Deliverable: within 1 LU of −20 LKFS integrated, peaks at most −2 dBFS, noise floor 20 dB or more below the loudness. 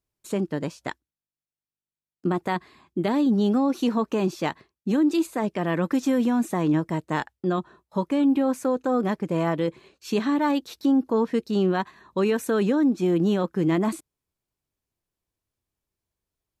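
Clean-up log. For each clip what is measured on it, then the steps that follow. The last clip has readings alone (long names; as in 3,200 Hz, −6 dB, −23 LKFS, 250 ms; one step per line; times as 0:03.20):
integrated loudness −24.5 LKFS; sample peak −12.5 dBFS; target loudness −20.0 LKFS
→ level +4.5 dB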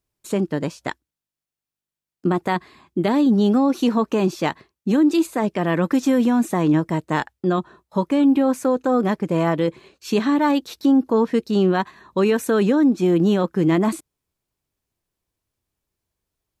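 integrated loudness −20.0 LKFS; sample peak −8.0 dBFS; background noise floor −89 dBFS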